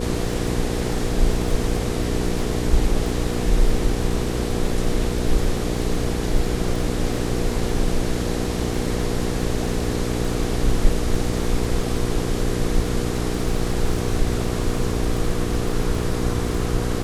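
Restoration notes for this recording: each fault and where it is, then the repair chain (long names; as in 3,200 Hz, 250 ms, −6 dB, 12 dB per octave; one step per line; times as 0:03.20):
surface crackle 31 per second −27 dBFS
mains hum 60 Hz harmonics 8 −26 dBFS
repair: click removal
hum removal 60 Hz, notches 8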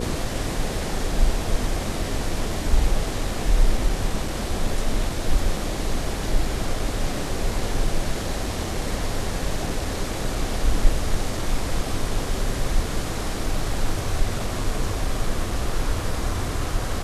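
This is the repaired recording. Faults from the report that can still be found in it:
none of them is left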